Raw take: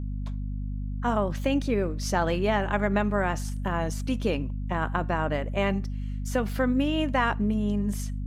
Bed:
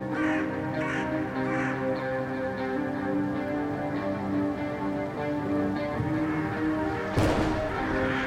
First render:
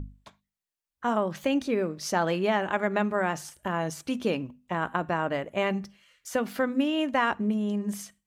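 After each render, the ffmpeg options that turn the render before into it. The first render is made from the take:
-af "bandreject=f=50:t=h:w=6,bandreject=f=100:t=h:w=6,bandreject=f=150:t=h:w=6,bandreject=f=200:t=h:w=6,bandreject=f=250:t=h:w=6"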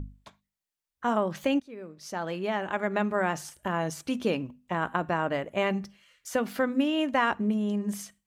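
-filter_complex "[0:a]asplit=2[s0][s1];[s0]atrim=end=1.6,asetpts=PTS-STARTPTS,afade=t=out:st=1.596:d=0.004:c=hsin:silence=0.0749894[s2];[s1]atrim=start=1.6,asetpts=PTS-STARTPTS,afade=t=in:d=1.62:silence=0.0749894[s3];[s2][s3]concat=n=2:v=0:a=1"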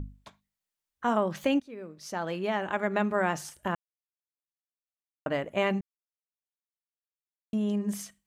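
-filter_complex "[0:a]asplit=5[s0][s1][s2][s3][s4];[s0]atrim=end=3.75,asetpts=PTS-STARTPTS,afade=t=out:st=3.746:d=0.004:c=hsin[s5];[s1]atrim=start=3.75:end=5.26,asetpts=PTS-STARTPTS,volume=0[s6];[s2]atrim=start=5.26:end=5.81,asetpts=PTS-STARTPTS,afade=t=in:d=0.004:c=hsin,afade=t=out:st=0.546:d=0.004:c=hsin[s7];[s3]atrim=start=5.81:end=7.53,asetpts=PTS-STARTPTS,volume=0[s8];[s4]atrim=start=7.53,asetpts=PTS-STARTPTS,afade=t=in:d=0.004:c=hsin[s9];[s5][s6][s7][s8][s9]concat=n=5:v=0:a=1"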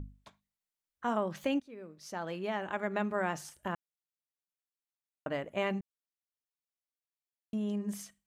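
-af "volume=0.531"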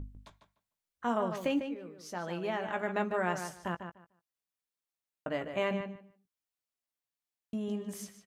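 -filter_complex "[0:a]asplit=2[s0][s1];[s1]adelay=17,volume=0.335[s2];[s0][s2]amix=inputs=2:normalize=0,asplit=2[s3][s4];[s4]adelay=149,lowpass=f=4000:p=1,volume=0.398,asplit=2[s5][s6];[s6]adelay=149,lowpass=f=4000:p=1,volume=0.18,asplit=2[s7][s8];[s8]adelay=149,lowpass=f=4000:p=1,volume=0.18[s9];[s5][s7][s9]amix=inputs=3:normalize=0[s10];[s3][s10]amix=inputs=2:normalize=0"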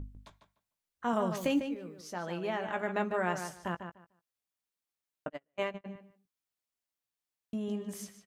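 -filter_complex "[0:a]asettb=1/sr,asplit=3[s0][s1][s2];[s0]atrim=end=1.134[s3];[s1]atrim=start=1.13:end=2.01,asetpts=PTS-STARTPTS,afade=t=in:d=0.004:c=qsin,afade=t=out:st=0.876:d=0.004:c=qsin,bass=f=250:g=5,treble=f=4000:g=8[s4];[s2]atrim=start=2.006[s5];[s3][s4]acrossfade=d=0.004:c1=hsin:c2=qsin[s6];[s6][s5]acrossfade=d=0.004:c1=qsin:c2=hsin,asplit=3[s7][s8][s9];[s7]afade=t=out:st=5.28:d=0.02[s10];[s8]agate=range=0.00708:threshold=0.0282:ratio=16:release=100:detection=peak,afade=t=in:st=5.28:d=0.02,afade=t=out:st=5.84:d=0.02[s11];[s9]afade=t=in:st=5.84:d=0.02[s12];[s10][s11][s12]amix=inputs=3:normalize=0"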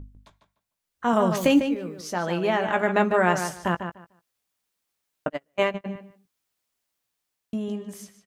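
-af "dynaudnorm=f=110:g=17:m=3.55"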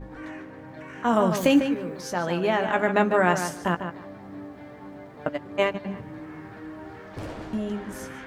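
-filter_complex "[1:a]volume=0.251[s0];[0:a][s0]amix=inputs=2:normalize=0"

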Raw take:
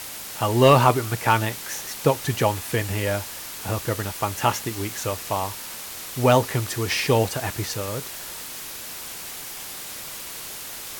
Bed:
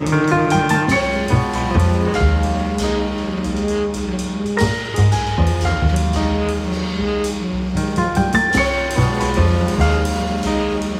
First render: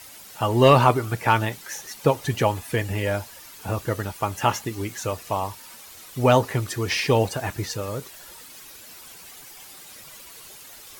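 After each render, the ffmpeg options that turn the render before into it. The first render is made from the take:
-af "afftdn=nr=11:nf=-36"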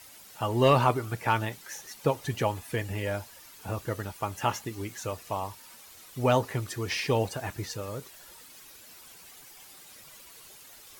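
-af "volume=0.473"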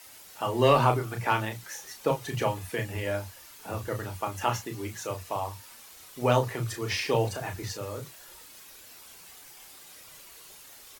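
-filter_complex "[0:a]asplit=2[s0][s1];[s1]adelay=33,volume=0.473[s2];[s0][s2]amix=inputs=2:normalize=0,acrossover=split=190[s3][s4];[s3]adelay=50[s5];[s5][s4]amix=inputs=2:normalize=0"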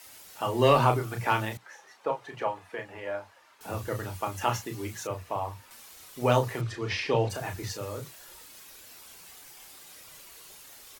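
-filter_complex "[0:a]asettb=1/sr,asplit=3[s0][s1][s2];[s0]atrim=end=1.574[s3];[s1]atrim=start=1.57:end=3.61,asetpts=PTS-STARTPTS,afade=t=in:d=0.004:c=qsin,afade=t=out:st=2.036:d=0.004:c=qsin,bandpass=f=940:t=q:w=0.89[s4];[s2]atrim=start=3.606[s5];[s3][s4]acrossfade=d=0.004:c1=hsin:c2=qsin[s6];[s6][s5]acrossfade=d=0.004:c1=qsin:c2=hsin,asettb=1/sr,asplit=3[s7][s8][s9];[s7]atrim=end=5.074[s10];[s8]atrim=start=5.07:end=5.71,asetpts=PTS-STARTPTS,afade=t=in:d=0.004:c=qsin,afade=t=out:st=0.636:d=0.004:c=qsin,acrossover=split=2800[s11][s12];[s12]acompressor=threshold=0.00158:ratio=4:attack=1:release=60[s13];[s11][s13]amix=inputs=2:normalize=0[s14];[s9]atrim=start=5.706[s15];[s10][s14]acrossfade=d=0.004:c1=hsin:c2=qsin[s16];[s16][s15]acrossfade=d=0.004:c1=qsin:c2=hsin,asettb=1/sr,asplit=3[s17][s18][s19];[s17]atrim=end=6.614[s20];[s18]atrim=start=6.61:end=7.3,asetpts=PTS-STARTPTS,afade=t=in:d=0.004:c=qsin,afade=t=out:st=0.686:d=0.004:c=qsin,lowpass=4400[s21];[s19]atrim=start=7.296[s22];[s20][s21]acrossfade=d=0.004:c1=hsin:c2=qsin[s23];[s23][s22]acrossfade=d=0.004:c1=qsin:c2=hsin"

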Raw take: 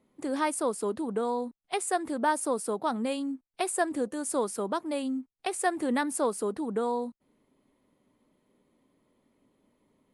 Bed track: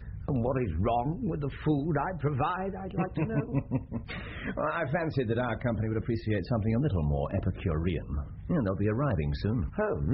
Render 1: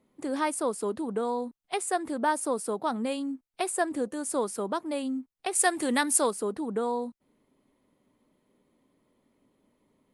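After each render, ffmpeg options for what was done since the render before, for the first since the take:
-filter_complex "[0:a]asettb=1/sr,asplit=3[s0][s1][s2];[s0]atrim=end=5.554[s3];[s1]atrim=start=5.55:end=6.31,asetpts=PTS-STARTPTS,afade=t=in:d=0.004:c=qsin,afade=t=out:st=0.756:d=0.004:c=qsin,highshelf=f=2100:g=11.5[s4];[s2]atrim=start=6.306[s5];[s3][s4]acrossfade=d=0.004:c1=hsin:c2=qsin[s6];[s6][s5]acrossfade=d=0.004:c1=qsin:c2=hsin"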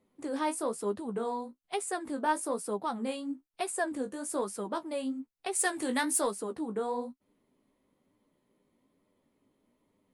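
-af "asoftclip=type=tanh:threshold=0.237,flanger=delay=9.8:depth=9.9:regen=29:speed=1.1:shape=sinusoidal"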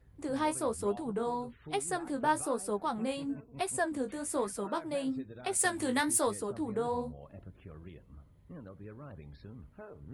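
-filter_complex "[1:a]volume=0.106[s0];[0:a][s0]amix=inputs=2:normalize=0"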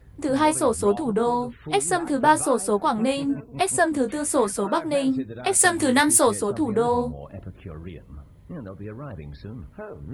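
-af "volume=3.76"

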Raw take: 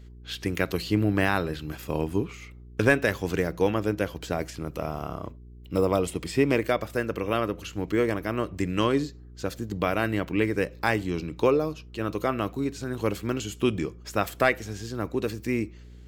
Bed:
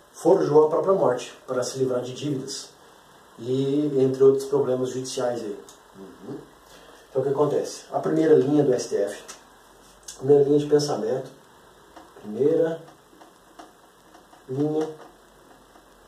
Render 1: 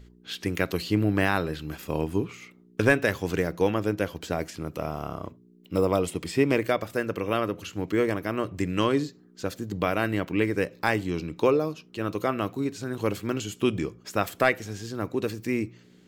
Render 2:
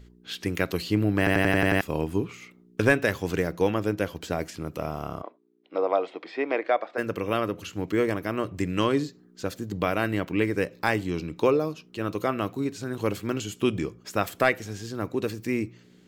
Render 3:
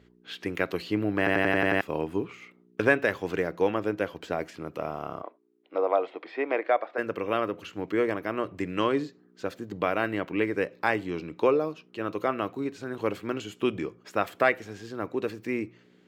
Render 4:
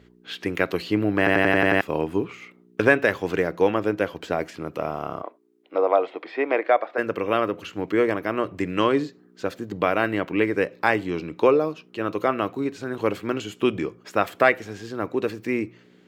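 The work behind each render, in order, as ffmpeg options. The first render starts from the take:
-af "bandreject=f=60:t=h:w=4,bandreject=f=120:t=h:w=4"
-filter_complex "[0:a]asplit=3[s0][s1][s2];[s0]afade=t=out:st=5.21:d=0.02[s3];[s1]highpass=f=350:w=0.5412,highpass=f=350:w=1.3066,equalizer=f=400:t=q:w=4:g=-5,equalizer=f=730:t=q:w=4:g=7,equalizer=f=2900:t=q:w=4:g=-8,lowpass=f=3600:w=0.5412,lowpass=f=3600:w=1.3066,afade=t=in:st=5.21:d=0.02,afade=t=out:st=6.97:d=0.02[s4];[s2]afade=t=in:st=6.97:d=0.02[s5];[s3][s4][s5]amix=inputs=3:normalize=0,asplit=8[s6][s7][s8][s9][s10][s11][s12][s13];[s6]atrim=end=1.272[s14];[s7]atrim=start=1.178:end=1.272[s15];[s8]atrim=start=1.178:end=1.272[s16];[s9]atrim=start=1.178:end=1.272[s17];[s10]atrim=start=1.178:end=1.272[s18];[s11]atrim=start=1.178:end=1.272[s19];[s12]atrim=start=1.178:end=1.272[s20];[s13]atrim=start=1.808[s21];[s14][s15]acrossfade=d=0.004:c1=hsin:c2=hsin[s22];[s22][s16]acrossfade=d=0.004:c1=hsin:c2=hsin[s23];[s23][s17]acrossfade=d=0.004:c1=hsin:c2=hsin[s24];[s24][s18]acrossfade=d=0.004:c1=hsin:c2=hsin[s25];[s25][s19]acrossfade=d=0.004:c1=hsin:c2=hsin[s26];[s26][s20]acrossfade=d=0.004:c1=hsin:c2=hsin[s27];[s27][s21]acrossfade=d=0.004:c1=hsin:c2=hsin"
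-af "highpass=86,bass=f=250:g=-8,treble=f=4000:g=-12"
-af "volume=1.78,alimiter=limit=0.708:level=0:latency=1"

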